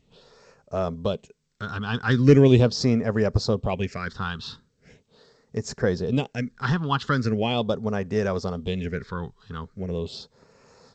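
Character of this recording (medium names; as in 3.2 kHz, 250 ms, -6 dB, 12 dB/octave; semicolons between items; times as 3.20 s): phasing stages 6, 0.4 Hz, lowest notch 570–3300 Hz; G.722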